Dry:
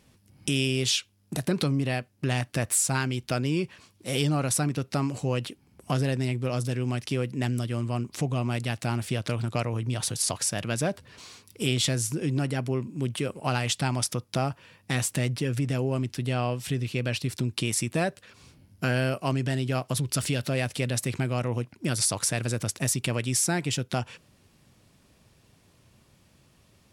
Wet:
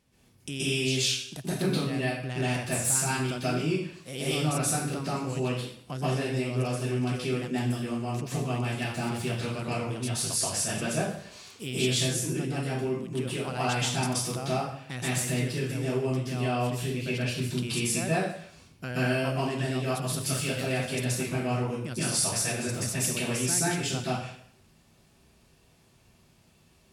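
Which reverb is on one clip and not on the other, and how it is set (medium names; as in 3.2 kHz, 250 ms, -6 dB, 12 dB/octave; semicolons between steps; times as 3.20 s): plate-style reverb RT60 0.61 s, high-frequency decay 0.95×, pre-delay 115 ms, DRR -9.5 dB; trim -10 dB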